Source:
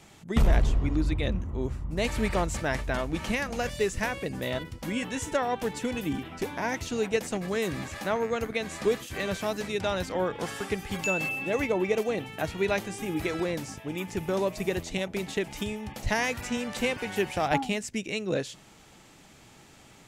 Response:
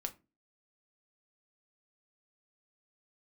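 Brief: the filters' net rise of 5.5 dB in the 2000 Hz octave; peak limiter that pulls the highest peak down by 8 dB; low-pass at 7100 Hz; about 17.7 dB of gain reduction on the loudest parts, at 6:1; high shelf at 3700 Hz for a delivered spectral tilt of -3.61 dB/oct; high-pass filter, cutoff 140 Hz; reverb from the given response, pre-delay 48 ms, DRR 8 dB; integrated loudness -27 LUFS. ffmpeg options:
-filter_complex "[0:a]highpass=140,lowpass=7.1k,equalizer=f=2k:t=o:g=5,highshelf=f=3.7k:g=6.5,acompressor=threshold=-40dB:ratio=6,alimiter=level_in=8.5dB:limit=-24dB:level=0:latency=1,volume=-8.5dB,asplit=2[a][b];[1:a]atrim=start_sample=2205,adelay=48[c];[b][c]afir=irnorm=-1:irlink=0,volume=-7dB[d];[a][d]amix=inputs=2:normalize=0,volume=16dB"

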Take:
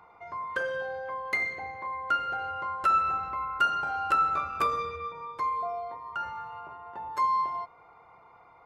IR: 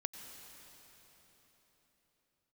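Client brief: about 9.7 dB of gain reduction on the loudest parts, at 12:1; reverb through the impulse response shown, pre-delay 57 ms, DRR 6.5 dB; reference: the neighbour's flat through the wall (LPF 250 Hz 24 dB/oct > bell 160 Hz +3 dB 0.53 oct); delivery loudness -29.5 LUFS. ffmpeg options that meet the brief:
-filter_complex "[0:a]acompressor=threshold=-30dB:ratio=12,asplit=2[a][b];[1:a]atrim=start_sample=2205,adelay=57[c];[b][c]afir=irnorm=-1:irlink=0,volume=-5.5dB[d];[a][d]amix=inputs=2:normalize=0,lowpass=f=250:w=0.5412,lowpass=f=250:w=1.3066,equalizer=f=160:t=o:w=0.53:g=3,volume=27.5dB"

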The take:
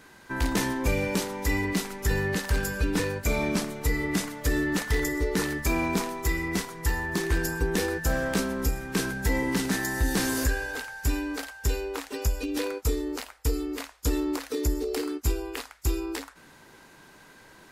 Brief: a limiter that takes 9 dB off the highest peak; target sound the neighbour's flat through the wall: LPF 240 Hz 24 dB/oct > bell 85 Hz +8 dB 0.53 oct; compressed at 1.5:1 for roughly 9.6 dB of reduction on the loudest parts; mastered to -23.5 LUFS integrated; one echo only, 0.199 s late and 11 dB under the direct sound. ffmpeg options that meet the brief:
-af "acompressor=threshold=-48dB:ratio=1.5,alimiter=level_in=7dB:limit=-24dB:level=0:latency=1,volume=-7dB,lowpass=f=240:w=0.5412,lowpass=f=240:w=1.3066,equalizer=f=85:t=o:w=0.53:g=8,aecho=1:1:199:0.282,volume=21dB"

